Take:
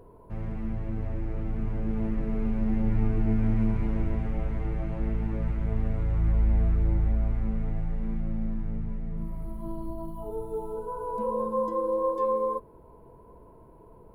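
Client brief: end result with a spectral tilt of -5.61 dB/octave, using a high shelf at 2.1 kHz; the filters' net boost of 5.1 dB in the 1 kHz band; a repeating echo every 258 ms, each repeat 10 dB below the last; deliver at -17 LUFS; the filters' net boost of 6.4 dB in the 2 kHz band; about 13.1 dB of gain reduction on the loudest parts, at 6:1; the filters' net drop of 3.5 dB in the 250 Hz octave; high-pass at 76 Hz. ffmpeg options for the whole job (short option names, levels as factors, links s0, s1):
-af "highpass=76,equalizer=f=250:t=o:g=-4.5,equalizer=f=1000:t=o:g=3.5,equalizer=f=2000:t=o:g=3.5,highshelf=f=2100:g=6,acompressor=threshold=0.0178:ratio=6,aecho=1:1:258|516|774|1032:0.316|0.101|0.0324|0.0104,volume=13.3"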